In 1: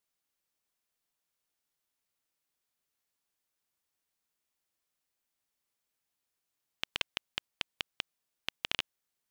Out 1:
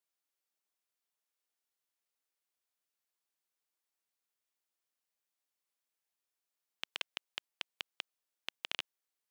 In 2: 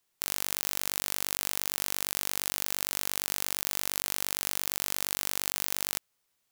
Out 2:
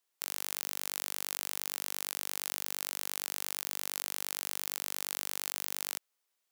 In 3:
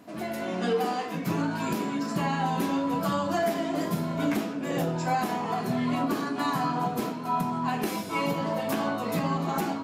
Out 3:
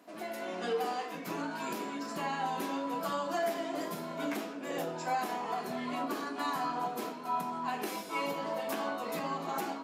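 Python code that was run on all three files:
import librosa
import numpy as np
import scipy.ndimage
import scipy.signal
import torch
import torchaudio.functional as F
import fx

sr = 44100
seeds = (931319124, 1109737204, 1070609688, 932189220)

y = scipy.signal.sosfilt(scipy.signal.butter(2, 330.0, 'highpass', fs=sr, output='sos'), x)
y = F.gain(torch.from_numpy(y), -5.0).numpy()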